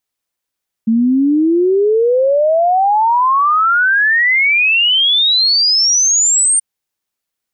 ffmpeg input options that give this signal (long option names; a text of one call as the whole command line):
ffmpeg -f lavfi -i "aevalsrc='0.355*clip(min(t,5.73-t)/0.01,0,1)*sin(2*PI*220*5.73/log(8900/220)*(exp(log(8900/220)*t/5.73)-1))':duration=5.73:sample_rate=44100" out.wav